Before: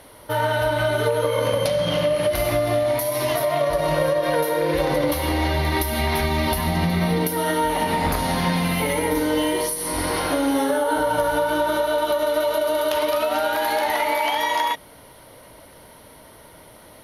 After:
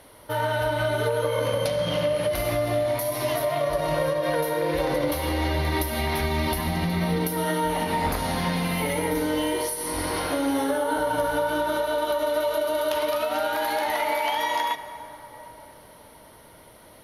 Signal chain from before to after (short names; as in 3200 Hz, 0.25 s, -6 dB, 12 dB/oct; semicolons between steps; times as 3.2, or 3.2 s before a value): reverb RT60 4.3 s, pre-delay 68 ms, DRR 12 dB; gain -4 dB